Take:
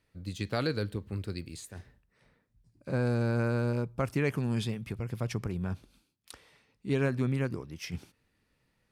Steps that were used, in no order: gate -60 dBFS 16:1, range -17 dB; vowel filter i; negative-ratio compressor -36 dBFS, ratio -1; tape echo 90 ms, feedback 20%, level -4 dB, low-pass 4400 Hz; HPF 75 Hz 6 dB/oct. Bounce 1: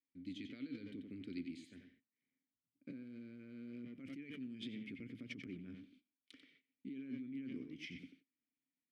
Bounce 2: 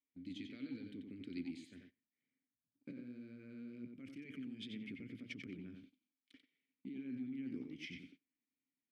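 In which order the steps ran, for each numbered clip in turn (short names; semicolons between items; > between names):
tape echo > HPF > gate > negative-ratio compressor > vowel filter; negative-ratio compressor > vowel filter > tape echo > gate > HPF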